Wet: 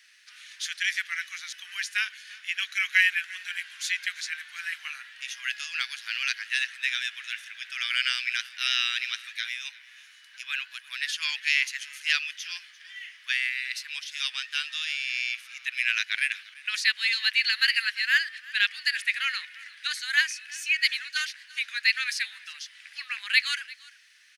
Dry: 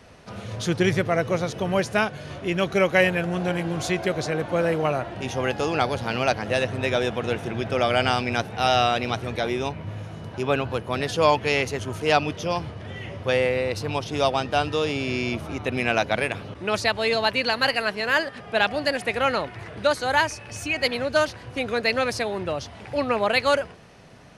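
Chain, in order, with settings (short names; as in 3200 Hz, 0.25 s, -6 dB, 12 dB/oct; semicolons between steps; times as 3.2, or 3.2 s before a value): elliptic high-pass 1700 Hz, stop band 70 dB; companded quantiser 8-bit; on a send: echo 0.344 s -19.5 dB; on the sum: dynamic EQ 2300 Hz, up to +3 dB, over -35 dBFS, Q 0.72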